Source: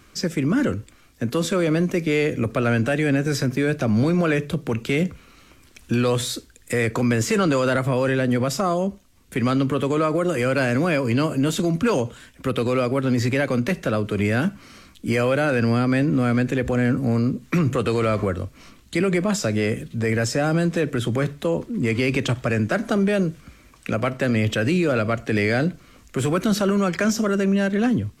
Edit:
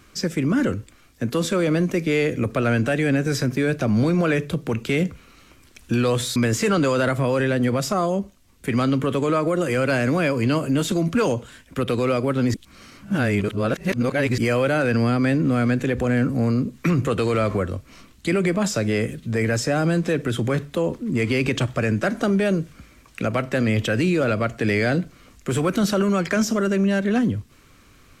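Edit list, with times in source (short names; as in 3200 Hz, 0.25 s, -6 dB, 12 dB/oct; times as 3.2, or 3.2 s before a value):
6.36–7.04 cut
13.22–15.06 reverse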